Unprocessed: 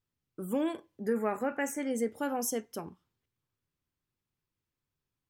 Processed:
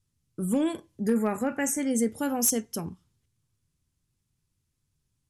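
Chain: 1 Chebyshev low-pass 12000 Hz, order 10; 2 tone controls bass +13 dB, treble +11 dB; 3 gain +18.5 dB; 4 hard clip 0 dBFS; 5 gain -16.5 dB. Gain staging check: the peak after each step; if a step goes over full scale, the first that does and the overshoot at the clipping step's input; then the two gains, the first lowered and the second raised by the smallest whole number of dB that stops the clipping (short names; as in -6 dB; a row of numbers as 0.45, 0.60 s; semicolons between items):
-19.5, -12.0, +6.5, 0.0, -16.5 dBFS; step 3, 6.5 dB; step 3 +11.5 dB, step 5 -9.5 dB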